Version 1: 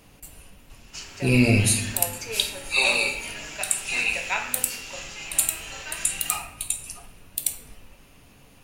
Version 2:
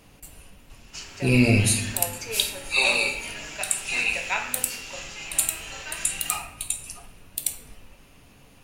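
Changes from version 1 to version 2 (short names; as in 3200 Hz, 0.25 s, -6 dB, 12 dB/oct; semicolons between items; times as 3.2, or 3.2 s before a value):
second sound: add high shelf 11000 Hz +11.5 dB; master: add high shelf 12000 Hz -3.5 dB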